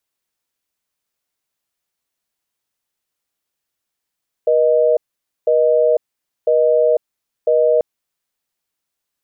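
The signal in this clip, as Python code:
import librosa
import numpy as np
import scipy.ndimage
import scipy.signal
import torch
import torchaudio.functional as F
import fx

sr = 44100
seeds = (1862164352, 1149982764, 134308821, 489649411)

y = fx.call_progress(sr, length_s=3.34, kind='busy tone', level_db=-13.5)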